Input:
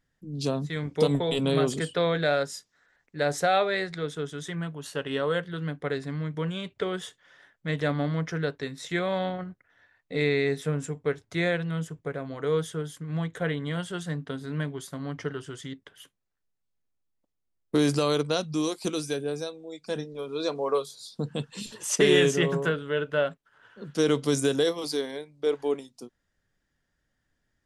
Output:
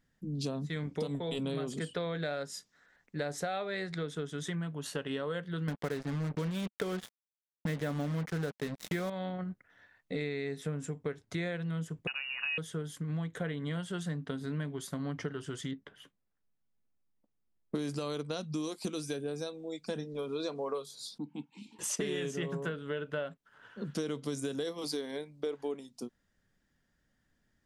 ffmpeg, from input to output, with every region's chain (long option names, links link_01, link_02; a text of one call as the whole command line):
ffmpeg -i in.wav -filter_complex "[0:a]asettb=1/sr,asplit=3[link_01][link_02][link_03];[link_01]atrim=end=5.684[link_04];[link_02]atrim=start=5.68:end=9.1,asetpts=PTS-STARTPTS,afade=type=in:duration=0.004:curve=qsin,afade=type=out:start_time=3.416:duration=0.004:curve=qsin,highshelf=frequency=4400:gain=-9.5,acontrast=78,acrusher=bits=4:mix=0:aa=0.5[link_05];[link_03]atrim=start=9.096[link_06];[link_04][link_05]acrossfade=duration=0.004:curve1=hsin:curve2=qsin[link_07];[link_07][link_06]acrossfade=duration=0.004:curve1=qsin:curve2=hsin,asettb=1/sr,asplit=3[link_08][link_09][link_10];[link_08]atrim=end=12.074[link_11];[link_09]atrim=start=12.07:end=12.58,asetpts=PTS-STARTPTS,afade=type=in:duration=0.004:curve=qsin,afade=type=out:start_time=0.506:duration=0.004:curve=qsin,aeval=exprs='val(0)*gte(abs(val(0)),0.00422)':channel_layout=same,lowpass=frequency=2600:width_type=q:width=0.5098,lowpass=frequency=2600:width_type=q:width=0.6013,lowpass=frequency=2600:width_type=q:width=0.9,lowpass=frequency=2600:width_type=q:width=2.563,afreqshift=-3000[link_12];[link_10]atrim=start=12.576[link_13];[link_11][link_12]acrossfade=duration=0.004:curve1=hsin:curve2=qsin[link_14];[link_14][link_13]acrossfade=duration=0.004:curve1=qsin:curve2=hsin,asettb=1/sr,asplit=3[link_15][link_16][link_17];[link_15]atrim=end=15.714[link_18];[link_16]atrim=start=15.71:end=17.75,asetpts=PTS-STARTPTS,afade=type=in:duration=0.004:curve=qsin,afade=type=out:start_time=2.036:duration=0.004:curve=qsin,lowpass=frequency=2000:poles=1,asplit=2[link_19][link_20];[link_20]adelay=14,volume=-14dB[link_21];[link_19][link_21]amix=inputs=2:normalize=0,atrim=end_sample=89964[link_22];[link_17]atrim=start=17.746[link_23];[link_18][link_22]acrossfade=duration=0.004:curve1=hsin:curve2=qsin[link_24];[link_24][link_23]acrossfade=duration=0.004:curve1=qsin:curve2=hsin,asettb=1/sr,asplit=3[link_25][link_26][link_27];[link_25]atrim=end=21.184[link_28];[link_26]atrim=start=21.18:end=21.79,asetpts=PTS-STARTPTS,afade=type=in:duration=0.004:curve=qsin,afade=type=out:start_time=0.606:duration=0.004:curve=qsin,asplit=3[link_29][link_30][link_31];[link_29]bandpass=frequency=300:width_type=q:width=8,volume=0dB[link_32];[link_30]bandpass=frequency=870:width_type=q:width=8,volume=-6dB[link_33];[link_31]bandpass=frequency=2240:width_type=q:width=8,volume=-9dB[link_34];[link_32][link_33][link_34]amix=inputs=3:normalize=0,equalizer=frequency=11000:width_type=o:width=2.5:gain=7.5,aecho=1:1:1.3:0.32,atrim=end_sample=26901[link_35];[link_27]atrim=start=21.786[link_36];[link_28][link_35]acrossfade=duration=0.004:curve1=hsin:curve2=qsin[link_37];[link_37][link_36]acrossfade=duration=0.004:curve1=qsin:curve2=hsin,equalizer=frequency=210:width_type=o:width=0.68:gain=6,acompressor=threshold=-33dB:ratio=6" out.wav